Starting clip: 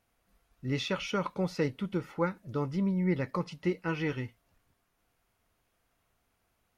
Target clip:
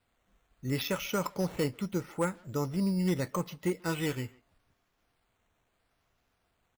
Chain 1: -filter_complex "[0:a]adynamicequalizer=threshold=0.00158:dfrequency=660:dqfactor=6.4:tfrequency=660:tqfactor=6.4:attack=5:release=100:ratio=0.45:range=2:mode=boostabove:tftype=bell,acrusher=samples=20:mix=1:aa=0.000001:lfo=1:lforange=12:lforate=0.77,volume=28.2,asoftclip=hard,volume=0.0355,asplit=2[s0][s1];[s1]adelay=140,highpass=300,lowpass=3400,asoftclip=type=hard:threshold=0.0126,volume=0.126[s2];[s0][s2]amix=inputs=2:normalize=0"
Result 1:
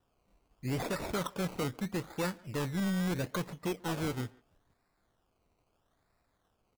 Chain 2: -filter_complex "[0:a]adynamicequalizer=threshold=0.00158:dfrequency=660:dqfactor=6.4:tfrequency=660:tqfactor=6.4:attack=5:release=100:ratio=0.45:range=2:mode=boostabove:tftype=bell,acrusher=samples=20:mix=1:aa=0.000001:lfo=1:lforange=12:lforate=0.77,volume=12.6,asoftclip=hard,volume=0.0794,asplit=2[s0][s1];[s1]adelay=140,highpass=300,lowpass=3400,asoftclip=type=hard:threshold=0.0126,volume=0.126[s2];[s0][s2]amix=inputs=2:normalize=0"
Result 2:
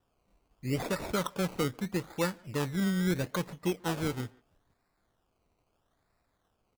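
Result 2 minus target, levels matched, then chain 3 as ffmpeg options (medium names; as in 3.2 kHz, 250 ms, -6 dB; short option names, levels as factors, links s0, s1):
decimation with a swept rate: distortion +8 dB
-filter_complex "[0:a]adynamicequalizer=threshold=0.00158:dfrequency=660:dqfactor=6.4:tfrequency=660:tqfactor=6.4:attack=5:release=100:ratio=0.45:range=2:mode=boostabove:tftype=bell,acrusher=samples=7:mix=1:aa=0.000001:lfo=1:lforange=4.2:lforate=0.77,volume=12.6,asoftclip=hard,volume=0.0794,asplit=2[s0][s1];[s1]adelay=140,highpass=300,lowpass=3400,asoftclip=type=hard:threshold=0.0126,volume=0.126[s2];[s0][s2]amix=inputs=2:normalize=0"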